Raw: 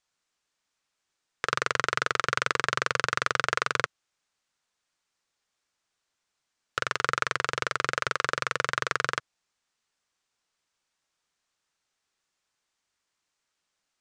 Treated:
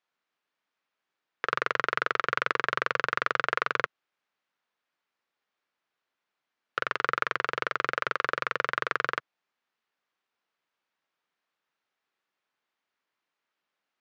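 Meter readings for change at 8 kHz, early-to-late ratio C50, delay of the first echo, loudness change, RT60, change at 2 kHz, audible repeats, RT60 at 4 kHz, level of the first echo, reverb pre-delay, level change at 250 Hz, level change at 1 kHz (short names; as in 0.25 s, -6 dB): -15.0 dB, none, none, -1.0 dB, none, -0.5 dB, none, none, none, none, -1.5 dB, 0.0 dB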